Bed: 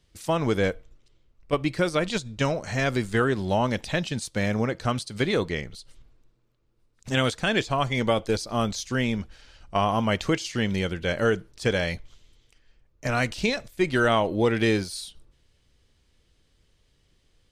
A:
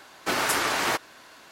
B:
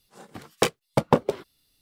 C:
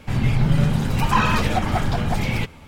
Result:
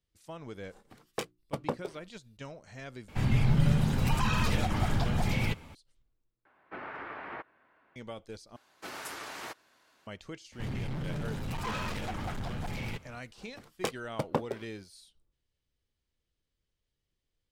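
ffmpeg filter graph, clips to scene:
ffmpeg -i bed.wav -i cue0.wav -i cue1.wav -i cue2.wav -filter_complex "[2:a]asplit=2[link_01][link_02];[3:a]asplit=2[link_03][link_04];[1:a]asplit=2[link_05][link_06];[0:a]volume=-19.5dB[link_07];[link_01]bandreject=frequency=60:width_type=h:width=6,bandreject=frequency=120:width_type=h:width=6,bandreject=frequency=180:width_type=h:width=6,bandreject=frequency=240:width_type=h:width=6,bandreject=frequency=300:width_type=h:width=6,bandreject=frequency=360:width_type=h:width=6[link_08];[link_03]acrossover=split=190|3000[link_09][link_10][link_11];[link_10]acompressor=threshold=-24dB:ratio=6:attack=3.2:release=140:knee=2.83:detection=peak[link_12];[link_09][link_12][link_11]amix=inputs=3:normalize=0[link_13];[link_05]lowpass=frequency=2200:width=0.5412,lowpass=frequency=2200:width=1.3066[link_14];[link_04]volume=20.5dB,asoftclip=hard,volume=-20.5dB[link_15];[link_07]asplit=4[link_16][link_17][link_18][link_19];[link_16]atrim=end=3.084[link_20];[link_13]atrim=end=2.67,asetpts=PTS-STARTPTS,volume=-6dB[link_21];[link_17]atrim=start=5.746:end=6.454[link_22];[link_14]atrim=end=1.51,asetpts=PTS-STARTPTS,volume=-15dB[link_23];[link_18]atrim=start=7.956:end=8.564[link_24];[link_06]atrim=end=1.51,asetpts=PTS-STARTPTS,volume=-16.5dB[link_25];[link_19]atrim=start=10.066[link_26];[link_08]atrim=end=1.81,asetpts=PTS-STARTPTS,volume=-13.5dB,afade=type=in:duration=0.004:curve=hsin,afade=type=out:start_time=1.806:duration=0.004:curve=hsin,adelay=560[link_27];[link_15]atrim=end=2.67,asetpts=PTS-STARTPTS,volume=-12dB,afade=type=in:duration=0.004:curve=hsin,afade=type=out:start_time=2.666:duration=0.004:curve=hsin,adelay=10520[link_28];[link_02]atrim=end=1.81,asetpts=PTS-STARTPTS,volume=-11dB,afade=type=in:duration=0.004:curve=hsin,afade=type=out:start_time=1.806:duration=0.004:curve=hsin,adelay=13220[link_29];[link_20][link_21]acrossfade=duration=0.004:curve1=hsin:curve2=hsin[link_30];[link_30][link_22]acrossfade=duration=0.004:curve1=hsin:curve2=hsin[link_31];[link_31][link_23]acrossfade=duration=0.004:curve1=hsin:curve2=hsin[link_32];[link_32][link_24]acrossfade=duration=0.004:curve1=hsin:curve2=hsin[link_33];[link_33][link_25]acrossfade=duration=0.004:curve1=hsin:curve2=hsin[link_34];[link_34][link_26]acrossfade=duration=0.004:curve1=hsin:curve2=hsin[link_35];[link_35][link_27][link_28][link_29]amix=inputs=4:normalize=0" out.wav

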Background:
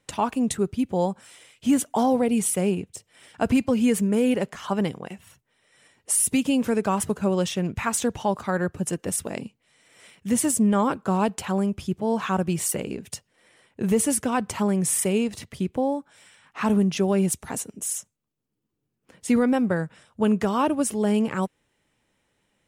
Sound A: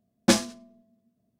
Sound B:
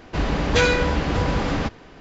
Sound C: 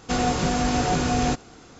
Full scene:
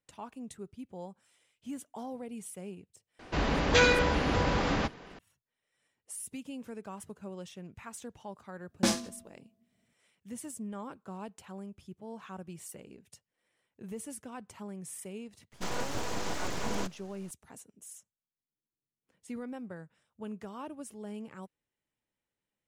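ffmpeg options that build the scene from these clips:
ffmpeg -i bed.wav -i cue0.wav -i cue1.wav -i cue2.wav -filter_complex "[0:a]volume=-20dB[link_01];[2:a]lowshelf=frequency=260:gain=-5.5[link_02];[1:a]alimiter=level_in=12.5dB:limit=-1dB:release=50:level=0:latency=1[link_03];[3:a]aeval=exprs='abs(val(0))':channel_layout=same[link_04];[link_02]atrim=end=2,asetpts=PTS-STARTPTS,volume=-3.5dB,afade=type=in:duration=0.004:curve=hsin,afade=type=out:start_time=1.996:duration=0.004:curve=hsin,adelay=3190[link_05];[link_03]atrim=end=1.39,asetpts=PTS-STARTPTS,volume=-15dB,afade=type=in:duration=0.004:curve=hsin,afade=type=out:start_time=1.386:duration=0.004:curve=hsin,adelay=8550[link_06];[link_04]atrim=end=1.79,asetpts=PTS-STARTPTS,volume=-9.5dB,afade=type=in:duration=0.004:curve=hsin,afade=type=out:start_time=1.786:duration=0.004:curve=hsin,adelay=15520[link_07];[link_01][link_05][link_06][link_07]amix=inputs=4:normalize=0" out.wav

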